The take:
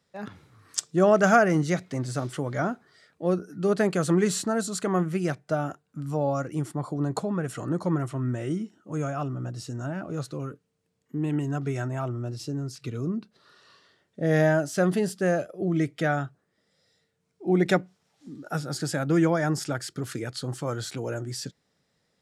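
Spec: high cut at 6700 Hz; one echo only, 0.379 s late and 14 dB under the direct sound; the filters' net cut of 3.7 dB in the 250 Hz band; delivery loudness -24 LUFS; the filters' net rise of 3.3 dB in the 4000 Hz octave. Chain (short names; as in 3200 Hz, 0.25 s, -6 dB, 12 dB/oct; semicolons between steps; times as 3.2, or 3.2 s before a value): LPF 6700 Hz; bell 250 Hz -6 dB; bell 4000 Hz +5 dB; echo 0.379 s -14 dB; gain +5 dB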